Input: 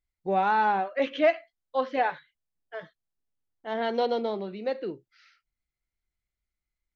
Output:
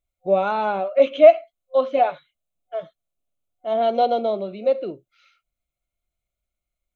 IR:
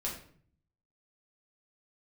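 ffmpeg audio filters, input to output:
-af "superequalizer=8b=2.82:9b=0.631:11b=0.251:14b=0.355,volume=3dB"

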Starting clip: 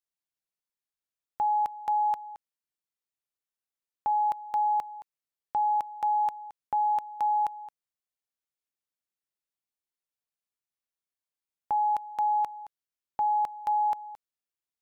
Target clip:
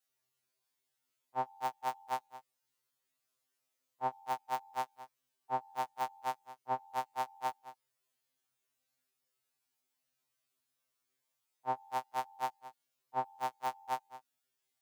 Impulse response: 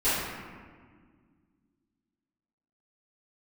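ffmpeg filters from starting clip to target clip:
-af "afftfilt=real='re':imag='-im':win_size=2048:overlap=0.75,highpass=94,afftfilt=real='re*2.45*eq(mod(b,6),0)':imag='im*2.45*eq(mod(b,6),0)':win_size=2048:overlap=0.75,volume=12.5dB"

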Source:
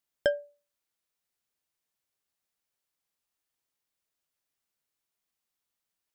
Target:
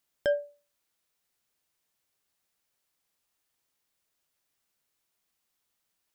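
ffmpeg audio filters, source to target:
-af "alimiter=level_in=0.5dB:limit=-24dB:level=0:latency=1:release=29,volume=-0.5dB,volume=6dB"

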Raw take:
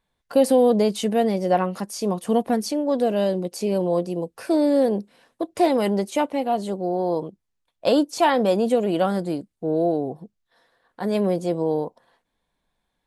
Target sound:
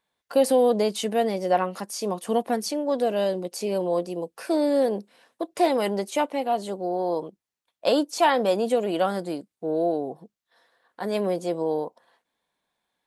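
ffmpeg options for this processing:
-af "highpass=f=410:p=1"

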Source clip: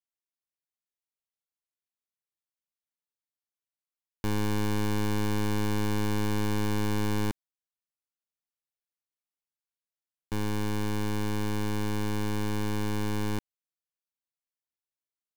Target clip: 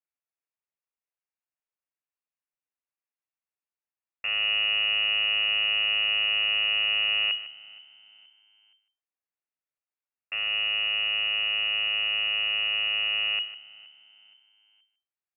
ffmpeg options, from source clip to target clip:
-filter_complex "[0:a]asplit=2[a][b];[b]aecho=0:1:152:0.188[c];[a][c]amix=inputs=2:normalize=0,lowpass=f=2.5k:t=q:w=0.5098,lowpass=f=2.5k:t=q:w=0.6013,lowpass=f=2.5k:t=q:w=0.9,lowpass=f=2.5k:t=q:w=2.563,afreqshift=-2900,asplit=2[d][e];[e]asplit=3[f][g][h];[f]adelay=472,afreqshift=73,volume=-23dB[i];[g]adelay=944,afreqshift=146,volume=-30.5dB[j];[h]adelay=1416,afreqshift=219,volume=-38.1dB[k];[i][j][k]amix=inputs=3:normalize=0[l];[d][l]amix=inputs=2:normalize=0"

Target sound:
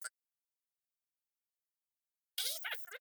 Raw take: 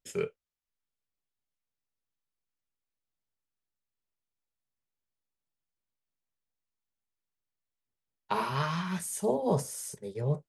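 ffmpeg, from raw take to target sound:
-af "aderivative,asetrate=153909,aresample=44100,volume=10dB"

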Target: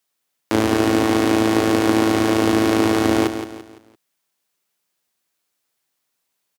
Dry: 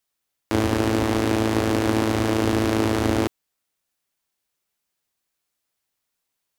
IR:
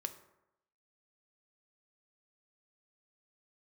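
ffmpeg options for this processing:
-af "highpass=130,aecho=1:1:170|340|510|680:0.335|0.127|0.0484|0.0184,volume=4dB"

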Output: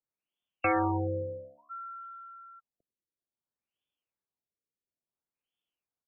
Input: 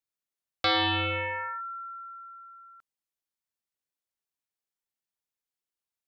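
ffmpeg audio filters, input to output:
-filter_complex "[0:a]tiltshelf=f=820:g=4,acrossover=split=210|590|2300[a][b][c][d];[b]acrusher=bits=2:mode=log:mix=0:aa=0.000001[e];[a][e][c][d]amix=inputs=4:normalize=0,asplit=4[f][g][h][i];[g]adelay=98,afreqshift=68,volume=-21dB[j];[h]adelay=196,afreqshift=136,volume=-29dB[k];[i]adelay=294,afreqshift=204,volume=-36.9dB[l];[f][j][k][l]amix=inputs=4:normalize=0,aexciter=amount=8.8:drive=6.4:freq=2.9k,lowshelf=f=65:g=-7.5,afftfilt=real='re*lt(b*sr/1024,560*pow(3600/560,0.5+0.5*sin(2*PI*0.58*pts/sr)))':imag='im*lt(b*sr/1024,560*pow(3600/560,0.5+0.5*sin(2*PI*0.58*pts/sr)))':win_size=1024:overlap=0.75"

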